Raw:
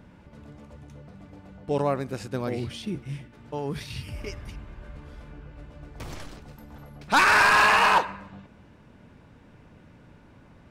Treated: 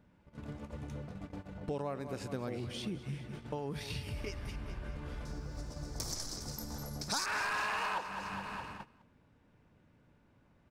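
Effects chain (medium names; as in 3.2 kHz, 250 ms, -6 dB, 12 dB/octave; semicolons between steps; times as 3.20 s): 5.25–7.26 s: resonant high shelf 3.9 kHz +11.5 dB, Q 3; feedback delay 207 ms, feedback 55%, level -15 dB; gate -45 dBFS, range -20 dB; compression 4:1, threshold -44 dBFS, peak gain reduction 25.5 dB; trim +5.5 dB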